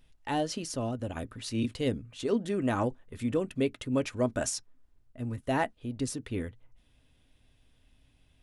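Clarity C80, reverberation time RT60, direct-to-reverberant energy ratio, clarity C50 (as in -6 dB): 60.0 dB, not exponential, 11.5 dB, 47.0 dB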